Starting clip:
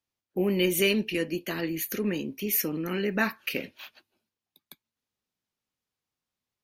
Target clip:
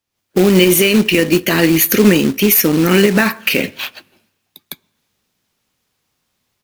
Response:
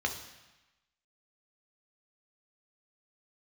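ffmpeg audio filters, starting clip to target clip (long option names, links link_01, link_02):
-filter_complex "[0:a]asplit=2[link_01][link_02];[1:a]atrim=start_sample=2205,lowpass=2500[link_03];[link_02][link_03]afir=irnorm=-1:irlink=0,volume=-24dB[link_04];[link_01][link_04]amix=inputs=2:normalize=0,acrusher=bits=3:mode=log:mix=0:aa=0.000001,dynaudnorm=framelen=110:gausssize=3:maxgain=11.5dB,alimiter=level_in=9.5dB:limit=-1dB:release=50:level=0:latency=1,volume=-1dB"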